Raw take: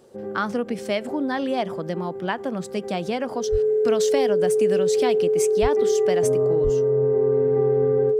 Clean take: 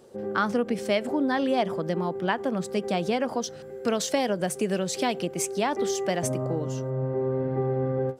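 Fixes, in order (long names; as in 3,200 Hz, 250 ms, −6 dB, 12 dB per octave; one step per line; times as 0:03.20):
notch filter 430 Hz, Q 30
high-pass at the plosives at 0:03.51/0:05.61/0:06.63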